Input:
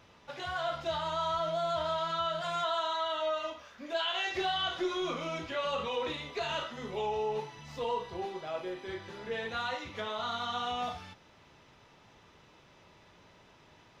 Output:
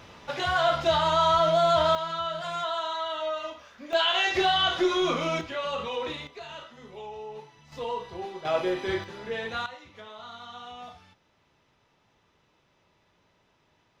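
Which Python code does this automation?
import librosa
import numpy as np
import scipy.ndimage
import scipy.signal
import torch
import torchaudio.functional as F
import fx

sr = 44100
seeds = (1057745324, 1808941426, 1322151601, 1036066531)

y = fx.gain(x, sr, db=fx.steps((0.0, 10.5), (1.95, 1.5), (3.93, 8.5), (5.41, 2.0), (6.27, -7.0), (7.72, 1.0), (8.45, 11.0), (9.04, 3.5), (9.66, -8.0)))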